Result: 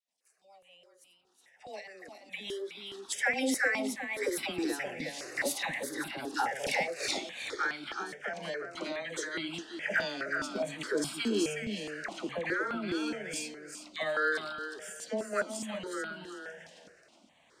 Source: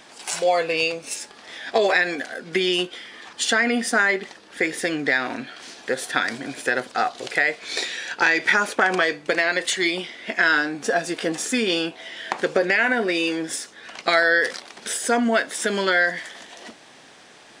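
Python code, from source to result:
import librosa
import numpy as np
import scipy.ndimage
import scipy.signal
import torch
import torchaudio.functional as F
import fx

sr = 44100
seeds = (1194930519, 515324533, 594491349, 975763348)

y = fx.doppler_pass(x, sr, speed_mps=30, closest_m=2.4, pass_at_s=7.09)
y = fx.recorder_agc(y, sr, target_db=-13.0, rise_db_per_s=10.0, max_gain_db=30)
y = fx.dispersion(y, sr, late='lows', ms=86.0, hz=800.0)
y = fx.rotary_switch(y, sr, hz=6.7, then_hz=0.9, switch_at_s=3.27)
y = np.clip(y, -10.0 ** (-18.5 / 20.0), 10.0 ** (-18.5 / 20.0))
y = fx.echo_feedback(y, sr, ms=367, feedback_pct=18, wet_db=-6.5)
y = fx.phaser_held(y, sr, hz=4.8, low_hz=360.0, high_hz=1800.0)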